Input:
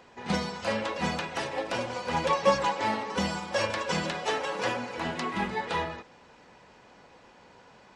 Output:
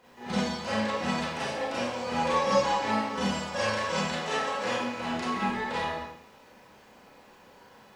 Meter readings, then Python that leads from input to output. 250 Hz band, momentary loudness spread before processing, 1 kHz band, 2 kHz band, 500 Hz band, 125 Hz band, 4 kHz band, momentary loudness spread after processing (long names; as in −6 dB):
+2.5 dB, 7 LU, +0.5 dB, 0.0 dB, 0.0 dB, −0.5 dB, +0.5 dB, 7 LU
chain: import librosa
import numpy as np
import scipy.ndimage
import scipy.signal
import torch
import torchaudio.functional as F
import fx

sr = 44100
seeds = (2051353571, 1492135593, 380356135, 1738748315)

y = fx.quant_dither(x, sr, seeds[0], bits=12, dither='triangular')
y = fx.rev_schroeder(y, sr, rt60_s=0.68, comb_ms=29, drr_db=-8.0)
y = F.gain(torch.from_numpy(y), -8.0).numpy()